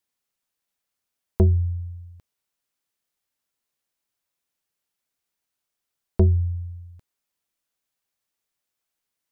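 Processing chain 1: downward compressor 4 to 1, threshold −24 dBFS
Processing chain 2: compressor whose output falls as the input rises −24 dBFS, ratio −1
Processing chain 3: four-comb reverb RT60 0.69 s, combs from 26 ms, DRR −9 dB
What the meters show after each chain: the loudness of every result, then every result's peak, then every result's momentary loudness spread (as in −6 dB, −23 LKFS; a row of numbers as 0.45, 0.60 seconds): −30.5, −28.5, −19.0 LKFS; −11.0, −16.5, −4.0 dBFS; 15, 17, 19 LU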